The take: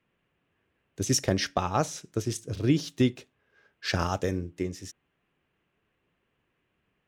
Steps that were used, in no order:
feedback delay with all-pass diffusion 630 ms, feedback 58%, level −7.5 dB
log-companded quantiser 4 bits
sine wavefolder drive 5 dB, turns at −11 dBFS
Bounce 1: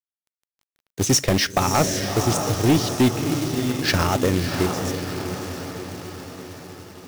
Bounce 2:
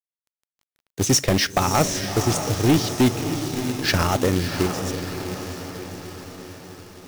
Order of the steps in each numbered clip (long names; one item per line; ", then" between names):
feedback delay with all-pass diffusion, then sine wavefolder, then log-companded quantiser
sine wavefolder, then feedback delay with all-pass diffusion, then log-companded quantiser